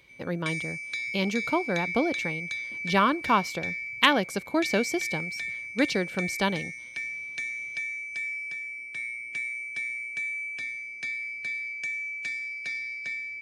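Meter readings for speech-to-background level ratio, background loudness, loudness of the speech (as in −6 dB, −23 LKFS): 4.0 dB, −32.0 LKFS, −28.0 LKFS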